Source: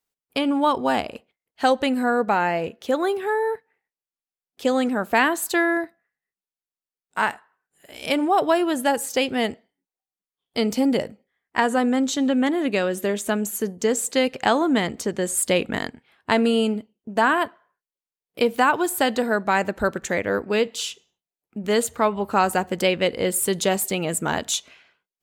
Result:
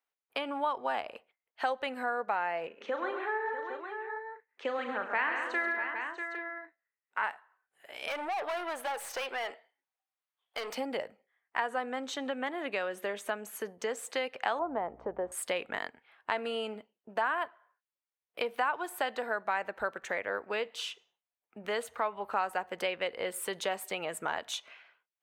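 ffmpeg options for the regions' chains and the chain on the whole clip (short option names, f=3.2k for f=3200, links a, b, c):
-filter_complex "[0:a]asettb=1/sr,asplit=3[a][b][c];[a]atrim=end=2.674[d];[b]atrim=start=2.67:end=7.24,asetpts=PTS-STARTPTS,afade=t=in:d=0.004:c=qsin,afade=t=out:st=4.566:d=0.004:c=qsin,highpass=f=160:w=0.5412,highpass=f=160:w=1.3066,equalizer=f=700:t=q:w=4:g=-8,equalizer=f=2k:t=q:w=4:g=3,equalizer=f=3.5k:t=q:w=4:g=-7,equalizer=f=5k:t=q:w=4:g=-9,lowpass=f=6.1k:w=0.5412,lowpass=f=6.1k:w=1.3066,asplit=2[e][f];[f]adelay=37,volume=-8.5dB[g];[e][g]amix=inputs=2:normalize=0,atrim=end_sample=201537,aecho=1:1:86|103|135|205|642|808:0.106|0.211|0.398|0.266|0.224|0.224,atrim=end_sample=201537[h];[c]atrim=start=7.236[i];[d][h]acrossfade=d=0.004:c1=hsin:c2=qsin[j];[j][i]acrossfade=d=0.004:c1=qsin:c2=hsin,asettb=1/sr,asplit=3[k][l][m];[k]atrim=end=8.084[n];[l]atrim=start=8.08:end=10.75,asetpts=PTS-STARTPTS,afade=t=in:d=0.004:c=qsin,afade=t=out:st=2.666:d=0.004:c=qsin,highpass=490,acontrast=49,aeval=exprs='(tanh(17.8*val(0)+0.3)-tanh(0.3))/17.8':c=same[o];[m]atrim=start=10.746[p];[n][o]acrossfade=d=0.004:c1=hsin:c2=qsin[q];[q][p]acrossfade=d=0.004:c1=qsin:c2=hsin,asettb=1/sr,asplit=3[r][s][t];[r]atrim=end=14.594[u];[s]atrim=start=14.59:end=15.32,asetpts=PTS-STARTPTS,afade=t=in:d=0.004:c=qsin,afade=t=out:st=0.726:d=0.004:c=qsin,aeval=exprs='val(0)+0.0112*(sin(2*PI*60*n/s)+sin(2*PI*2*60*n/s)/2+sin(2*PI*3*60*n/s)/3+sin(2*PI*4*60*n/s)/4+sin(2*PI*5*60*n/s)/5)':c=same,lowpass=f=820:t=q:w=1.8[v];[t]atrim=start=15.316[w];[u][v]acrossfade=d=0.004:c1=hsin:c2=qsin[x];[x][w]acrossfade=d=0.004:c1=qsin:c2=hsin,acrossover=split=520 3000:gain=0.112 1 0.224[y][z][aa];[y][z][aa]amix=inputs=3:normalize=0,bandreject=f=7.2k:w=11,acompressor=threshold=-35dB:ratio=2"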